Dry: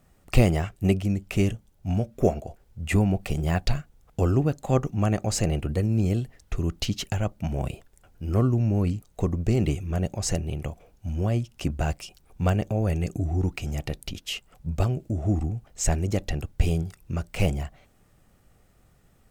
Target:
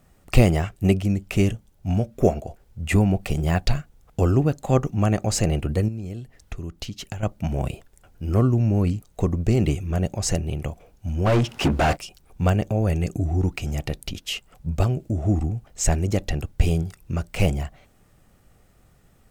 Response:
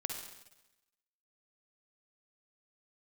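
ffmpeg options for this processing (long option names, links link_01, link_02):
-filter_complex "[0:a]asettb=1/sr,asplit=3[link_01][link_02][link_03];[link_01]atrim=end=5.884[link_04];[link_02]atrim=start=5.88:end=7.23,asetpts=PTS-STARTPTS,afade=type=in:duration=0.004:curve=qsin,afade=type=out:start_time=1.346:duration=0.004:curve=qsin,acompressor=threshold=-33dB:ratio=6[link_05];[link_03]atrim=start=7.226[link_06];[link_04][link_05]acrossfade=duration=0.004:curve1=hsin:curve2=qsin[link_07];[link_07][link_06]acrossfade=duration=0.004:curve1=qsin:curve2=hsin,asplit=3[link_08][link_09][link_10];[link_08]afade=type=out:start_time=11.25:duration=0.02[link_11];[link_09]asplit=2[link_12][link_13];[link_13]highpass=frequency=720:poles=1,volume=33dB,asoftclip=type=tanh:threshold=-14dB[link_14];[link_12][link_14]amix=inputs=2:normalize=0,lowpass=frequency=1500:poles=1,volume=-6dB,afade=type=in:start_time=11.25:duration=0.02,afade=type=out:start_time=11.95:duration=0.02[link_15];[link_10]afade=type=in:start_time=11.95:duration=0.02[link_16];[link_11][link_15][link_16]amix=inputs=3:normalize=0,volume=3dB"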